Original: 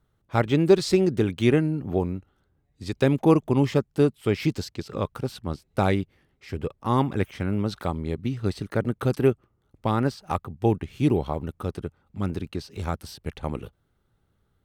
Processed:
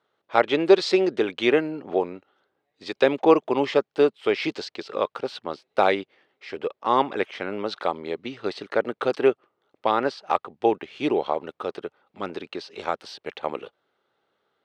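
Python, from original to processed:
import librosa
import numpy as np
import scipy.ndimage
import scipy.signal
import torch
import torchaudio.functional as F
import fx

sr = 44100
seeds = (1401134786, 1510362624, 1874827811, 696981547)

y = scipy.signal.sosfilt(scipy.signal.cheby1(2, 1.0, [490.0, 3900.0], 'bandpass', fs=sr, output='sos'), x)
y = y * 10.0 ** (6.0 / 20.0)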